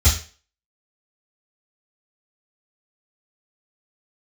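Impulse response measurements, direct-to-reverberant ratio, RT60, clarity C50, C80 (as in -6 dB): -13.0 dB, 0.40 s, 7.0 dB, 12.0 dB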